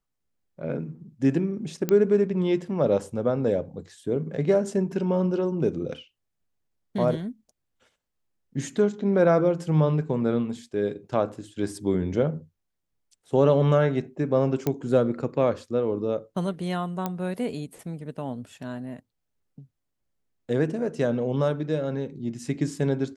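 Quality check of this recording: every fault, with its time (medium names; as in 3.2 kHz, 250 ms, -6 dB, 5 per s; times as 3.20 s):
1.89 s: pop -11 dBFS
14.67 s: pop -12 dBFS
17.06 s: pop -14 dBFS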